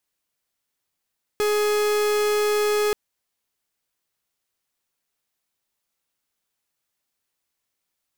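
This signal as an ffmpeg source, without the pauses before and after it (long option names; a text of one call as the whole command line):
ffmpeg -f lavfi -i "aevalsrc='0.0891*(2*lt(mod(419*t,1),0.44)-1)':duration=1.53:sample_rate=44100" out.wav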